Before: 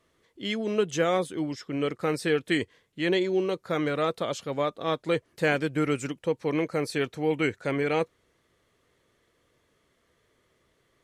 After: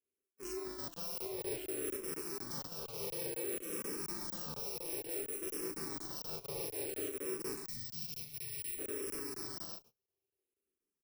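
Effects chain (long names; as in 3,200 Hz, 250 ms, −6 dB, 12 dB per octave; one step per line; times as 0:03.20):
samples in bit-reversed order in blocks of 64 samples
ring modulation 160 Hz
parametric band 390 Hz +15 dB 0.29 octaves
double-tracking delay 40 ms −3 dB
bouncing-ball delay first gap 680 ms, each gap 0.65×, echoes 5
reversed playback
downward compressor 8 to 1, threshold −38 dBFS, peak gain reduction 20 dB
reversed playback
low-shelf EQ 66 Hz −11.5 dB
noise gate −59 dBFS, range −27 dB
in parallel at 0 dB: brickwall limiter −33.5 dBFS, peak gain reduction 6.5 dB
on the sum: gain on a spectral selection 0:07.66–0:08.78, 250–1,800 Hz −20 dB
regular buffer underruns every 0.24 s, samples 1,024, zero, from 0:00.94
frequency shifter mixed with the dry sound −0.57 Hz
level −1.5 dB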